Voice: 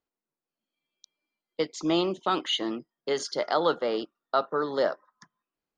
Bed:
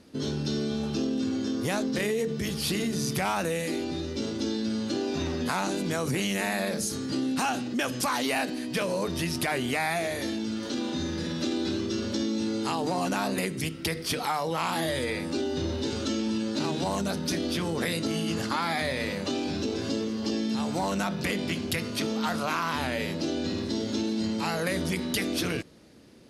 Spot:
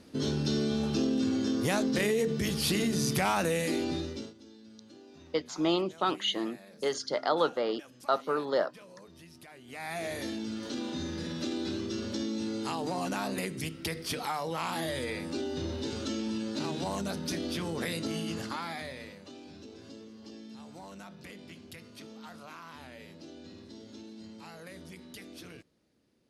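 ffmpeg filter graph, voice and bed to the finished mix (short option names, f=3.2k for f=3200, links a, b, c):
-filter_complex "[0:a]adelay=3750,volume=-2.5dB[a];[1:a]volume=18.5dB,afade=t=out:st=3.92:d=0.42:silence=0.0668344,afade=t=in:st=9.66:d=0.44:silence=0.11885,afade=t=out:st=18.16:d=1.04:silence=0.211349[b];[a][b]amix=inputs=2:normalize=0"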